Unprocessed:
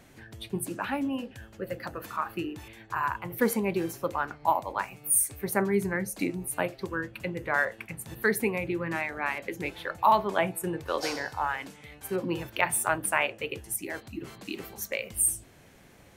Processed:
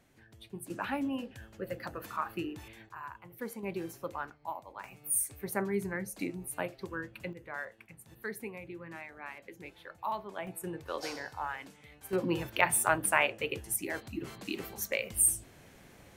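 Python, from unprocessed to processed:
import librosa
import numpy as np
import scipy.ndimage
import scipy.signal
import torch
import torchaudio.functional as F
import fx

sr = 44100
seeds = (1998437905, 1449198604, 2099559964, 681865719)

y = fx.gain(x, sr, db=fx.steps((0.0, -11.5), (0.7, -3.5), (2.89, -15.0), (3.63, -8.5), (4.3, -14.5), (4.84, -6.5), (7.33, -14.0), (10.47, -7.5), (12.13, -0.5)))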